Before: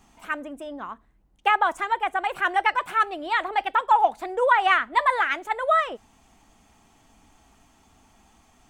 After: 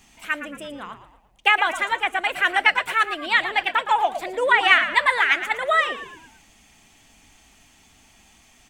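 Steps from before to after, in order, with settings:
high shelf with overshoot 1,600 Hz +7.5 dB, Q 1.5
echo with shifted repeats 114 ms, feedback 45%, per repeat −80 Hz, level −11.5 dB

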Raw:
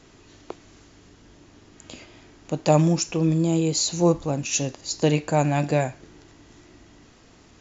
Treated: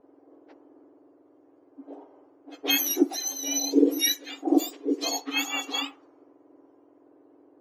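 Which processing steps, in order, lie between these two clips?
frequency axis turned over on the octave scale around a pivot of 1,400 Hz
low-pass that shuts in the quiet parts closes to 700 Hz, open at −19 dBFS
level −1 dB

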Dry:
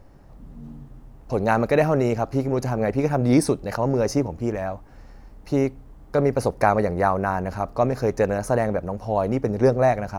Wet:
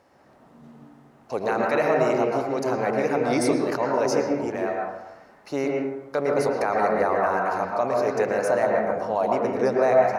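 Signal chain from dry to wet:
meter weighting curve A
brickwall limiter −13.5 dBFS, peak gain reduction 8.5 dB
convolution reverb RT60 1.0 s, pre-delay 102 ms, DRR −1 dB

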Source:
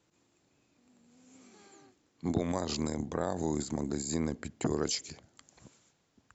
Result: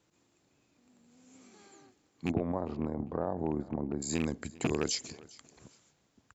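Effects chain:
loose part that buzzes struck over −31 dBFS, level −25 dBFS
0:02.31–0:04.02: Chebyshev low-pass filter 950 Hz, order 2
repeating echo 400 ms, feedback 25%, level −22 dB

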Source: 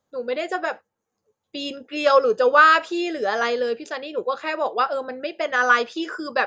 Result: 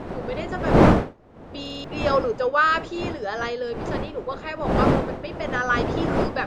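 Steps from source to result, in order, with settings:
wind on the microphone 530 Hz −19 dBFS
buffer that repeats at 0:01.61, samples 2,048, times 4
level −5.5 dB

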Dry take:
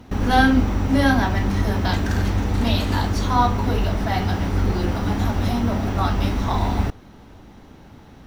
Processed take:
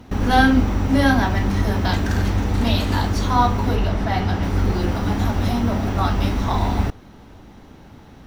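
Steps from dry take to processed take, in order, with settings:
0:03.75–0:04.43: high-shelf EQ 7,400 Hz −9 dB
level +1 dB

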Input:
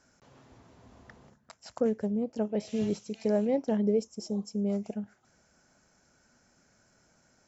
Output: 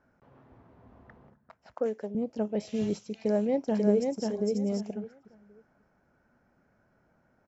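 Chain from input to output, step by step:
0:01.74–0:02.15: high-pass filter 350 Hz 12 dB per octave
0:03.20–0:04.26: delay throw 540 ms, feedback 20%, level −3 dB
low-pass that shuts in the quiet parts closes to 1,500 Hz, open at −26 dBFS

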